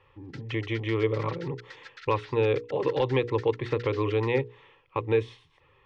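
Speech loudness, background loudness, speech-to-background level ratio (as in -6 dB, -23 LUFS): -28.5 LUFS, -48.5 LUFS, 20.0 dB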